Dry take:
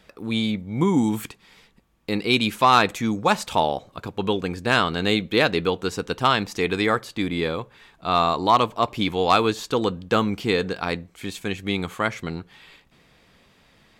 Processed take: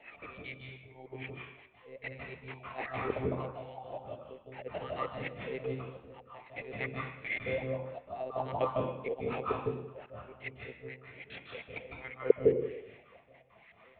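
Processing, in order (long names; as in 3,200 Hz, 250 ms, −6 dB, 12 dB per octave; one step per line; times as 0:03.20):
peak hold with a rise ahead of every peak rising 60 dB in 0.46 s
gate pattern "xx.xx.x..x.." 199 BPM −60 dB
0:02.53–0:04.10: hum removal 55.63 Hz, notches 36
LFO wah 2.5 Hz 450–1,300 Hz, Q 7.7
volume swells 586 ms
0:09.55–0:10.54: output level in coarse steps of 11 dB
high shelf with overshoot 1,800 Hz +6.5 dB, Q 3
one-pitch LPC vocoder at 8 kHz 130 Hz
convolution reverb RT60 0.85 s, pre-delay 152 ms, DRR 0 dB
dynamic equaliser 280 Hz, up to +4 dB, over −46 dBFS, Q 1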